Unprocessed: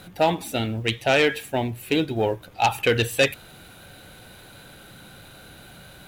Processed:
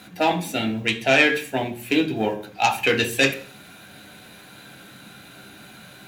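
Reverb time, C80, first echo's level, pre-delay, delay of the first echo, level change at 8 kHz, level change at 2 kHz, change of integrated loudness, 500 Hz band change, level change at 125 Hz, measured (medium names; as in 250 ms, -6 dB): 0.40 s, 18.0 dB, no echo, 3 ms, no echo, +2.0 dB, +4.5 dB, +2.0 dB, -1.0 dB, -3.5 dB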